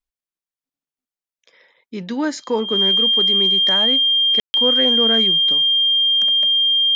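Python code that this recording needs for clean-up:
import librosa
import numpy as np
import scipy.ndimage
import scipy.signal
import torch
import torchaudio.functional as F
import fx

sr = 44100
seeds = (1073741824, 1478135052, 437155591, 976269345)

y = fx.notch(x, sr, hz=3200.0, q=30.0)
y = fx.fix_ambience(y, sr, seeds[0], print_start_s=1.43, print_end_s=1.93, start_s=4.4, end_s=4.54)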